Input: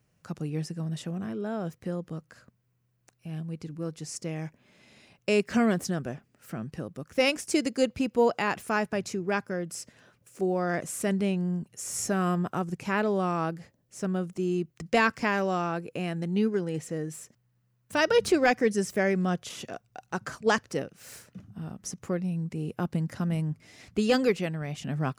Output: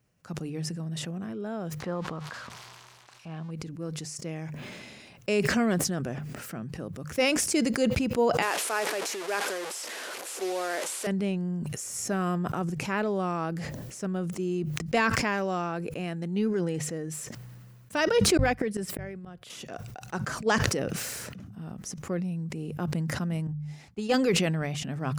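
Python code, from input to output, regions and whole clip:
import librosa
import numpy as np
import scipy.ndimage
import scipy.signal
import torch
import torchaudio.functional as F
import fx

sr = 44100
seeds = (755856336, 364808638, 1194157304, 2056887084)

y = fx.chain(x, sr, fx.crossing_spikes(level_db=-39.5),
    fx.cheby1_lowpass(hz=4000.0, order=2),
    fx.peak_eq(hz=1000.0, db=13.5, octaves=1.3), at=(1.8, 3.51))
y = fx.chain(y, sr, fx.delta_mod(bps=64000, step_db=-29.0),
    fx.highpass(hz=350.0, slope=24), at=(8.42, 11.07))
y = fx.chain(y, sr, fx.highpass(hz=98.0, slope=24),
    fx.peak_eq(hz=6200.0, db=-11.0, octaves=0.46),
    fx.gate_flip(shuts_db=-21.0, range_db=-40), at=(18.37, 19.5))
y = fx.chain(y, sr, fx.peak_eq(hz=840.0, db=11.5, octaves=0.22),
    fx.upward_expand(threshold_db=-46.0, expansion=2.5), at=(23.47, 24.14))
y = fx.hum_notches(y, sr, base_hz=50, count=3)
y = fx.sustainer(y, sr, db_per_s=24.0)
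y = F.gain(torch.from_numpy(y), -2.0).numpy()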